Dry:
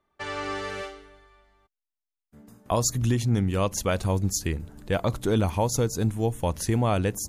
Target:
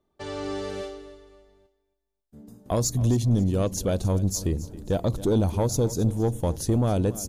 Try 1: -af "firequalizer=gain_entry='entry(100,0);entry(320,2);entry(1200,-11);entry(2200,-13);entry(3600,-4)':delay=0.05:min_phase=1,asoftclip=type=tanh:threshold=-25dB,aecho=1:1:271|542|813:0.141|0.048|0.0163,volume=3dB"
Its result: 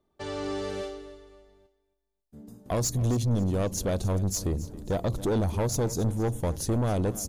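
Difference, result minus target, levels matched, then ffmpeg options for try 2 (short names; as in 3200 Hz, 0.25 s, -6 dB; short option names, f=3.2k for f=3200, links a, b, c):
soft clip: distortion +8 dB
-af "firequalizer=gain_entry='entry(100,0);entry(320,2);entry(1200,-11);entry(2200,-13);entry(3600,-4)':delay=0.05:min_phase=1,asoftclip=type=tanh:threshold=-17.5dB,aecho=1:1:271|542|813:0.141|0.048|0.0163,volume=3dB"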